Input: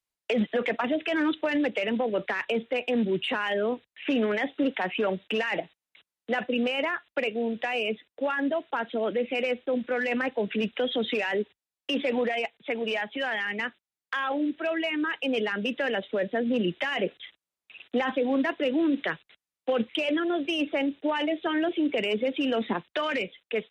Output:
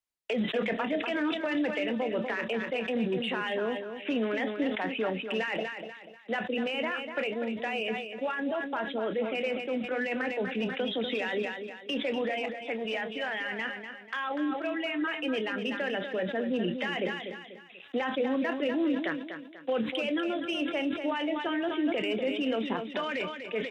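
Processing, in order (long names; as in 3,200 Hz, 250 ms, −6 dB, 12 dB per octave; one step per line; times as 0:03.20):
double-tracking delay 27 ms −13 dB
repeating echo 244 ms, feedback 37%, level −8.5 dB
level that may fall only so fast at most 68 dB per second
level −4.5 dB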